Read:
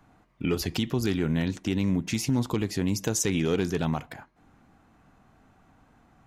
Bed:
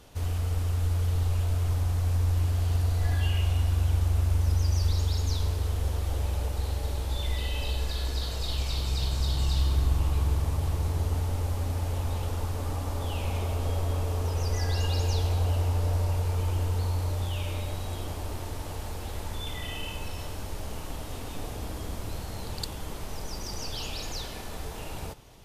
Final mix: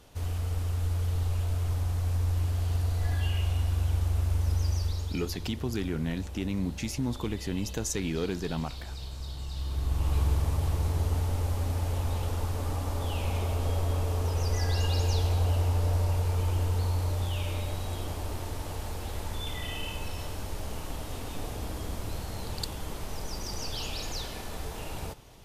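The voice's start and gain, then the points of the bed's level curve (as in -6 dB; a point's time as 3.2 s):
4.70 s, -5.5 dB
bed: 4.69 s -2.5 dB
5.36 s -11 dB
9.51 s -11 dB
10.15 s 0 dB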